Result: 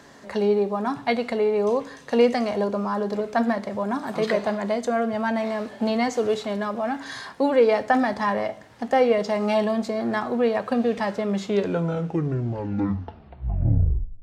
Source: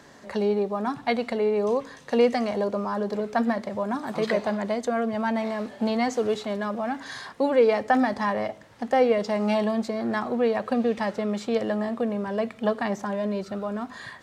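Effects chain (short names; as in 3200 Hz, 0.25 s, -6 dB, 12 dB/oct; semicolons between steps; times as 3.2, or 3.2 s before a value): tape stop at the end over 3.00 s; two-slope reverb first 0.41 s, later 2.5 s, from -28 dB, DRR 11 dB; gain +1.5 dB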